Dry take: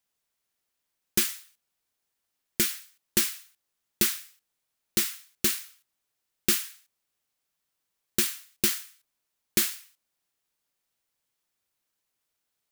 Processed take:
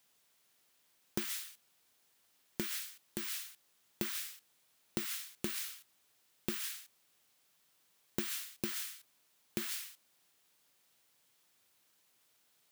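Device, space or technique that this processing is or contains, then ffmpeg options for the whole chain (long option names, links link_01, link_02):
broadcast voice chain: -af "highpass=97,deesser=0.55,acompressor=threshold=-41dB:ratio=4,equalizer=frequency=3400:width_type=o:width=0.77:gain=2,alimiter=level_in=3dB:limit=-24dB:level=0:latency=1:release=98,volume=-3dB,volume=9dB"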